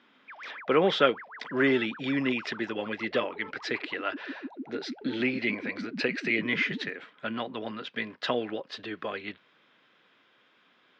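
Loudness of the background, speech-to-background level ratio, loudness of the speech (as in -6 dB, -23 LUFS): -42.5 LUFS, 12.5 dB, -30.0 LUFS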